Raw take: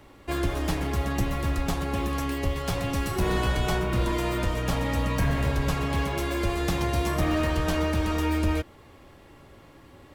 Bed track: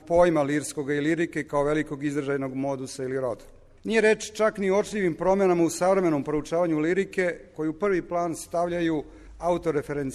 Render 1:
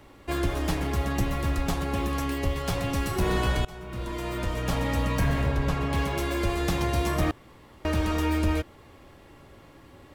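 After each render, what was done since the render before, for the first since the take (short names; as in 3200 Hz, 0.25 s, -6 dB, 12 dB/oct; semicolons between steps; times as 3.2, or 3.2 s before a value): 3.65–4.81 fade in, from -21.5 dB; 5.42–5.93 high shelf 3900 Hz -8.5 dB; 7.31–7.85 room tone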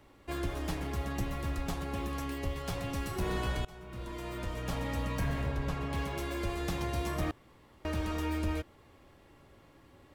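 gain -8 dB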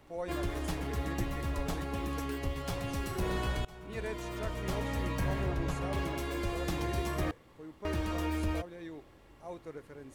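add bed track -19.5 dB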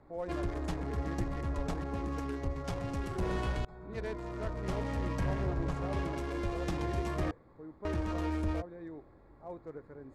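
Wiener smoothing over 15 samples; LPF 8900 Hz 12 dB/oct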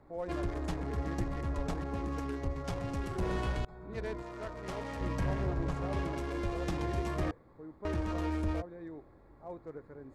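4.22–5.01 low shelf 280 Hz -10 dB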